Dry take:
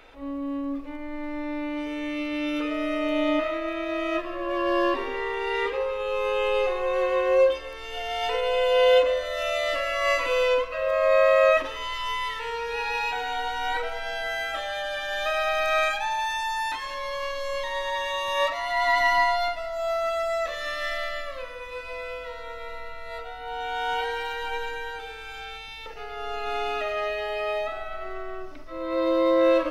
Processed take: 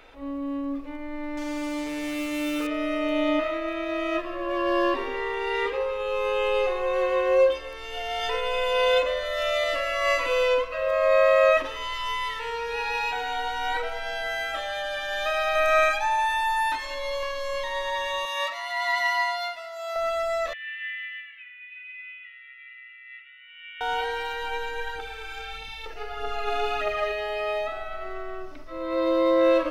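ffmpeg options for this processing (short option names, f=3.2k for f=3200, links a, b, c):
-filter_complex "[0:a]asettb=1/sr,asplit=3[a][b][c];[a]atrim=end=1.374[d];[b]atrim=start=1.37:end=2.67,asetpts=PTS-STARTPTS,afade=t=in:d=0.004:c=qsin,afade=t=out:st=1.296:d=0.004:c=qsin,acrusher=bits=5:mix=0:aa=0.5[e];[c]atrim=start=2.666[f];[d][e]acrossfade=d=0.004:c1=hsin:c2=qsin[g];[g][f]acrossfade=d=0.004:c1=qsin:c2=hsin,asettb=1/sr,asplit=3[h][i][j];[h]atrim=end=8.194[k];[i]atrim=start=8.19:end=9.64,asetpts=PTS-STARTPTS,afade=t=in:d=0.004:c=qsin,afade=t=out:st=1.446:d=0.004:c=qsin,aecho=1:1:5.1:0.5,atrim=end_sample=63945[l];[j]atrim=start=9.636[m];[k][l]acrossfade=d=0.004:c1=hsin:c2=qsin[n];[n][m]acrossfade=d=0.004:c1=qsin:c2=hsin,asettb=1/sr,asplit=3[o][p][q];[o]atrim=end=15.554[r];[p]atrim=start=15.55:end=17.23,asetpts=PTS-STARTPTS,afade=t=in:d=0.004:c=qsin,afade=t=out:st=1.676:d=0.004:c=qsin,aecho=1:1:3.3:0.65,atrim=end_sample=74088[s];[q]atrim=start=17.226[t];[r][s]acrossfade=d=0.004:c1=hsin:c2=qsin[u];[u][t]acrossfade=d=0.004:c1=qsin:c2=hsin,asettb=1/sr,asplit=3[v][w][x];[v]atrim=end=18.254[y];[w]atrim=start=18.25:end=19.96,asetpts=PTS-STARTPTS,afade=t=in:d=0.004:c=qsin,afade=t=out:st=1.706:d=0.004:c=qsin,highpass=f=1.3k:p=1[z];[x]atrim=start=19.956[aa];[y][z]acrossfade=d=0.004:c1=hsin:c2=qsin[ab];[ab][aa]acrossfade=d=0.004:c1=qsin:c2=hsin,asettb=1/sr,asplit=3[ac][ad][ae];[ac]atrim=end=20.534[af];[ad]atrim=start=20.53:end=23.81,asetpts=PTS-STARTPTS,afade=t=in:d=0.004:c=qsin,afade=t=out:st=3.276:d=0.004:c=qsin,asuperpass=centerf=2300:order=8:qfactor=1.8[ag];[ae]atrim=start=23.806[ah];[af][ag]acrossfade=d=0.004:c1=hsin:c2=qsin[ai];[ai][ah]acrossfade=d=0.004:c1=qsin:c2=hsin,asplit=3[aj][ak][al];[aj]afade=t=out:st=24.75:d=0.02[am];[ak]aphaser=in_gain=1:out_gain=1:delay=3.2:decay=0.47:speed=1.6:type=triangular,afade=t=in:st=24.75:d=0.02,afade=t=out:st=27.11:d=0.02[an];[al]afade=t=in:st=27.11:d=0.02[ao];[am][an][ao]amix=inputs=3:normalize=0"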